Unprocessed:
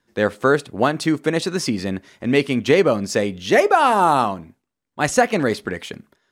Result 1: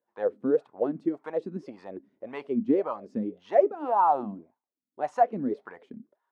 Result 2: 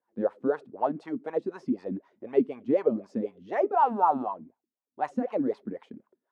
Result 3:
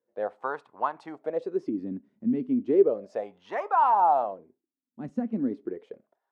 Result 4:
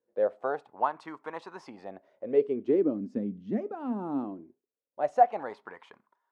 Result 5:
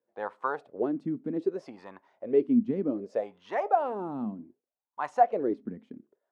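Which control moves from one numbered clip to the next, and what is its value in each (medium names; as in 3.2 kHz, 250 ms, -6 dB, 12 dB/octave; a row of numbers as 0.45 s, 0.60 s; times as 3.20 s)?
wah-wah, rate: 1.8 Hz, 4 Hz, 0.34 Hz, 0.21 Hz, 0.65 Hz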